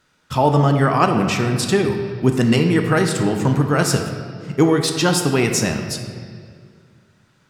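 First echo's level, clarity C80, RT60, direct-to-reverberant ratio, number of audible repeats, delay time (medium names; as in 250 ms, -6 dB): no echo, 7.0 dB, 2.0 s, 4.0 dB, no echo, no echo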